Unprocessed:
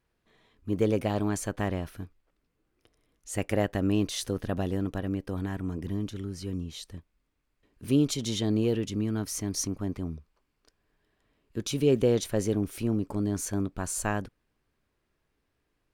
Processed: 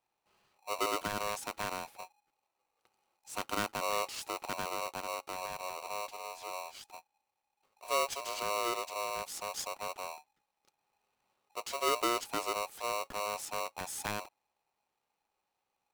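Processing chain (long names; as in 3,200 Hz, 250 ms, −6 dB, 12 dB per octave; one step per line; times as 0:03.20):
ring modulator with a square carrier 830 Hz
level −8 dB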